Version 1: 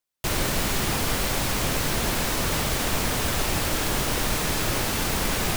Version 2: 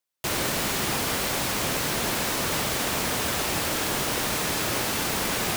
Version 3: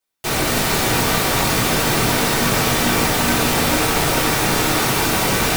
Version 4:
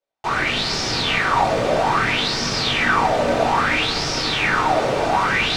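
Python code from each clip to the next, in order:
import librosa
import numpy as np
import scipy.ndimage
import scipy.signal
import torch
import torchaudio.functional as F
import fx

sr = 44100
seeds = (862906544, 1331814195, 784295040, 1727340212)

y1 = fx.highpass(x, sr, hz=180.0, slope=6)
y2 = fx.echo_split(y1, sr, split_hz=2400.0, low_ms=438, high_ms=229, feedback_pct=52, wet_db=-4.5)
y2 = fx.room_shoebox(y2, sr, seeds[0], volume_m3=250.0, walls='furnished', distance_m=3.7)
y3 = fx.air_absorb(y2, sr, metres=110.0)
y3 = fx.bell_lfo(y3, sr, hz=0.61, low_hz=550.0, high_hz=5400.0, db=18)
y3 = F.gain(torch.from_numpy(y3), -6.5).numpy()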